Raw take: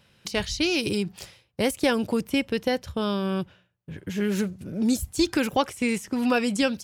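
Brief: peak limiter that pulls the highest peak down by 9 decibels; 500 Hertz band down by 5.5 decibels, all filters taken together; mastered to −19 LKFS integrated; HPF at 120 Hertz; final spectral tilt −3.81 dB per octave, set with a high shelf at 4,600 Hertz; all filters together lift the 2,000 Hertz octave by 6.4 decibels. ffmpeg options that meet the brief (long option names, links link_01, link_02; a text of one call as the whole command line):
ffmpeg -i in.wav -af "highpass=120,equalizer=frequency=500:width_type=o:gain=-7,equalizer=frequency=2000:width_type=o:gain=7,highshelf=frequency=4600:gain=7.5,volume=8.5dB,alimiter=limit=-7.5dB:level=0:latency=1" out.wav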